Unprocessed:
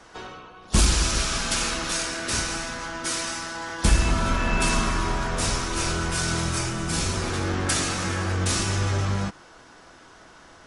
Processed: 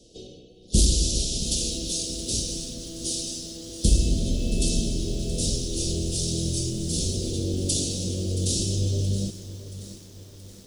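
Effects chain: inverse Chebyshev band-stop 910–2000 Hz, stop band 50 dB; bit-crushed delay 675 ms, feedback 55%, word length 7-bit, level -13.5 dB

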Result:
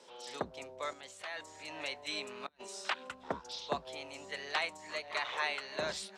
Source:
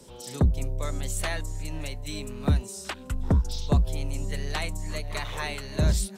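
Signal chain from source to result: 0.93–3.09 s: compressor with a negative ratio -32 dBFS, ratio -0.5; band-pass 640–4100 Hz

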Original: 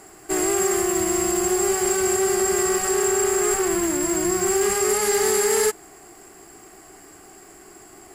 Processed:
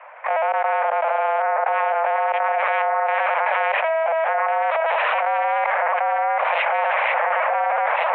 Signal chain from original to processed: 2.58–3.89 s: tilt EQ +3 dB/octave; level rider gain up to 14.5 dB; one-sided clip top -15 dBFS, bottom -2 dBFS; trance gate "..xx.xx.xxx" 117 bpm -24 dB; 4.70–5.20 s: integer overflow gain 17 dB; on a send: echo whose repeats swap between lows and highs 740 ms, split 1.8 kHz, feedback 64%, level -8.5 dB; on the sum: LPC vocoder at 8 kHz pitch kept; mistuned SSB +330 Hz 220–2200 Hz; level flattener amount 100%; trim -8 dB

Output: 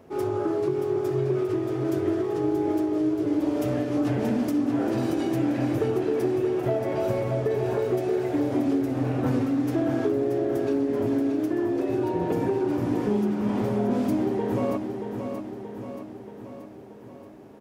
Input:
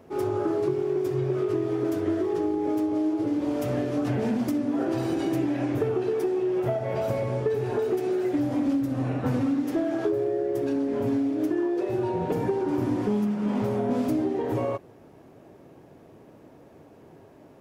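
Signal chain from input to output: feedback delay 629 ms, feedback 58%, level -7 dB

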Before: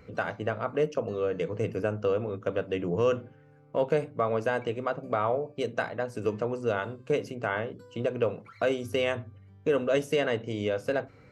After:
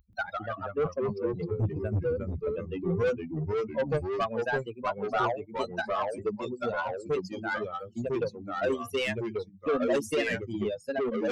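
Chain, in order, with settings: expander on every frequency bin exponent 3; 0.85–1.79 s: tilt EQ -3 dB/octave; saturation -31.5 dBFS, distortion -9 dB; ever faster or slower copies 131 ms, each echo -2 st, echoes 2; trim +8.5 dB

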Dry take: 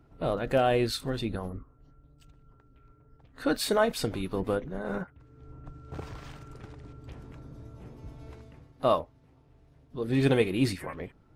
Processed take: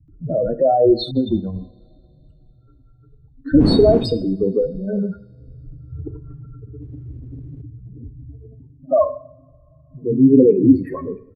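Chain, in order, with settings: spectral contrast enhancement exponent 3.5; 3.51–4.07 s: wind noise 200 Hz -24 dBFS; two-slope reverb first 0.54 s, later 3.4 s, from -27 dB, DRR 9.5 dB; 1.03–1.48 s: gate -33 dBFS, range -30 dB; 6.74–7.54 s: waveshaping leveller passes 1; peaking EQ 270 Hz +10 dB 1.7 oct; bands offset in time lows, highs 80 ms, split 160 Hz; trim +6.5 dB

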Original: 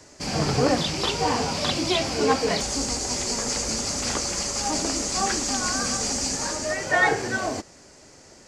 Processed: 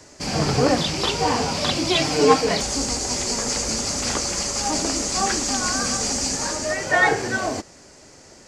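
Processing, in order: 1.95–2.41 s: comb 6.6 ms, depth 83%; trim +2.5 dB

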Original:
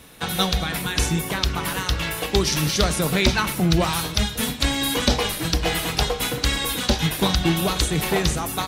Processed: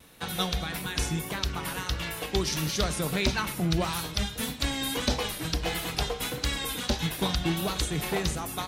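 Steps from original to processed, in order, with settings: vibrato 1.6 Hz 42 cents; trim -7.5 dB

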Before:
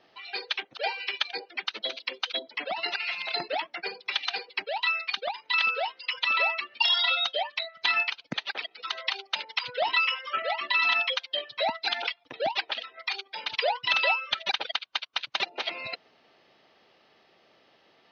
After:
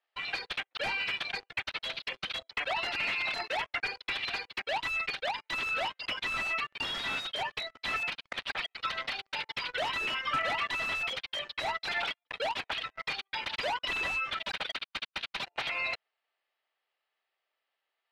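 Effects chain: in parallel at -4 dB: integer overflow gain 25.5 dB; on the sum: high-pass 400 Hz 12 dB/octave; differentiator; waveshaping leveller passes 5; compression, threshold -22 dBFS, peak gain reduction 4.5 dB; low-pass 1.9 kHz 12 dB/octave

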